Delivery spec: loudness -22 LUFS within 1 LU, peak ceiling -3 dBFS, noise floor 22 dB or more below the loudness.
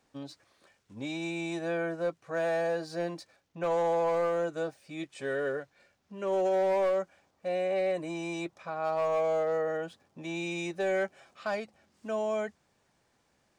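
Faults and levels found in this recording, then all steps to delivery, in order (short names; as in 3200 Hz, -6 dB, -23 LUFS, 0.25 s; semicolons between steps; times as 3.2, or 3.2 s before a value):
clipped 1.8%; flat tops at -23.5 dBFS; loudness -32.0 LUFS; peak -23.5 dBFS; loudness target -22.0 LUFS
-> clip repair -23.5 dBFS; gain +10 dB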